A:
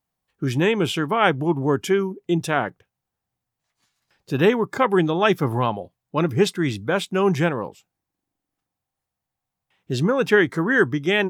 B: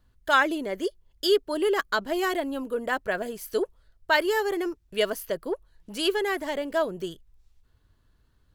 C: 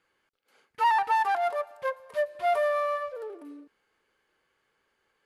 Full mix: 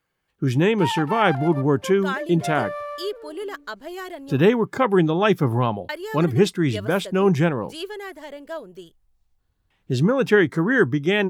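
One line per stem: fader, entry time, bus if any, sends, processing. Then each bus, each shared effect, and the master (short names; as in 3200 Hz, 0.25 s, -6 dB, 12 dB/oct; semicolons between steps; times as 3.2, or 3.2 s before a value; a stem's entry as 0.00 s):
-2.0 dB, 0.00 s, no send, low shelf 380 Hz +5.5 dB
-7.5 dB, 1.75 s, muted 4.43–5.89, no send, dry
-4.0 dB, 0.00 s, no send, dry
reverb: off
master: dry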